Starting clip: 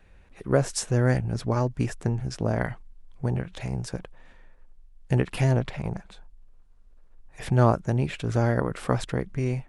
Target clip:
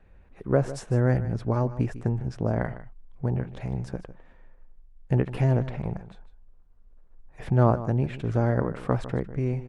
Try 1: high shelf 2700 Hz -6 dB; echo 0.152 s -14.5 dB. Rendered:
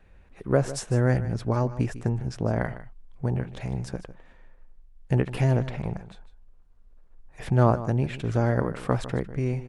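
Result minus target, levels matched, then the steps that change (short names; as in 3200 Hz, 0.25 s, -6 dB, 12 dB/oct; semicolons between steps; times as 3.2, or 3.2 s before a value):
4000 Hz band +6.0 dB
change: high shelf 2700 Hz -15.5 dB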